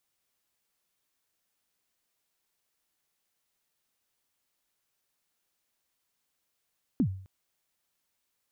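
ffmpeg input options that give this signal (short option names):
-f lavfi -i "aevalsrc='0.112*pow(10,-3*t/0.52)*sin(2*PI*(300*0.079/log(95/300)*(exp(log(95/300)*min(t,0.079)/0.079)-1)+95*max(t-0.079,0)))':d=0.26:s=44100"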